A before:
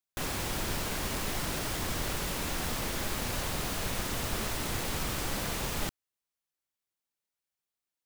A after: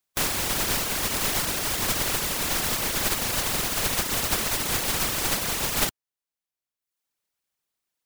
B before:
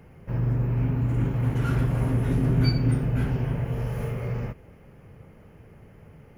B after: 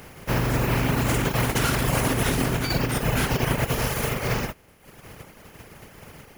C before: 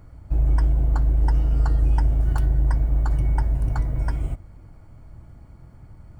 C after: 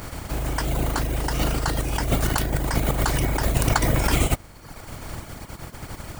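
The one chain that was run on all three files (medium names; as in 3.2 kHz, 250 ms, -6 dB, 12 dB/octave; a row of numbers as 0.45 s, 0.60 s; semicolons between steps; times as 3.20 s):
spectral contrast reduction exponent 0.52; reverb removal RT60 1 s; compressor with a negative ratio -27 dBFS, ratio -1; normalise loudness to -24 LUFS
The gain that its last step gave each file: +9.5 dB, +5.0 dB, +5.0 dB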